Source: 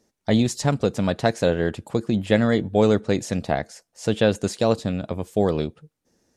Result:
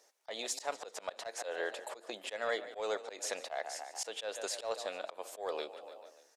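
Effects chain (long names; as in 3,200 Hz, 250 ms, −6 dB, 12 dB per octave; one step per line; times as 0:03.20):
echo with shifted repeats 146 ms, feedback 52%, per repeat +31 Hz, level −19 dB
downward compressor 2 to 1, threshold −34 dBFS, peak gain reduction 12 dB
high-pass filter 540 Hz 24 dB per octave
soft clipping −24 dBFS, distortion −19 dB
volume swells 142 ms
level +3.5 dB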